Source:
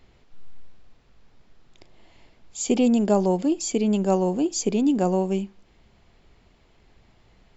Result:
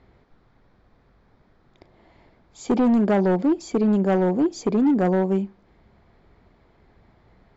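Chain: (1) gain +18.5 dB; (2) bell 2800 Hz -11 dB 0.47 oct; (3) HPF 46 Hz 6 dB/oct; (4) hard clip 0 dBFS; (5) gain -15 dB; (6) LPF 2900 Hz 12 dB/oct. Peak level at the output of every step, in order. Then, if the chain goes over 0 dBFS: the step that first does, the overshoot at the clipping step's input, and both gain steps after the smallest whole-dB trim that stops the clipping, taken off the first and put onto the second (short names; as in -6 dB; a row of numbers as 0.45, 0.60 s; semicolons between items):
+9.5, +9.5, +9.0, 0.0, -15.0, -14.5 dBFS; step 1, 9.0 dB; step 1 +9.5 dB, step 5 -6 dB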